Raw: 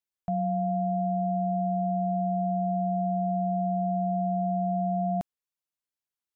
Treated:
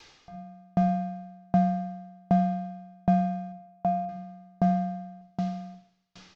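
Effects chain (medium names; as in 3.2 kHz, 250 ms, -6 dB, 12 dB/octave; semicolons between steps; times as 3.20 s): one-bit delta coder 32 kbps, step -46 dBFS; 3.52–4.09 s: vowel filter a; delay 531 ms -8 dB; simulated room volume 3000 m³, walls furnished, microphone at 3.9 m; sawtooth tremolo in dB decaying 1.3 Hz, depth 40 dB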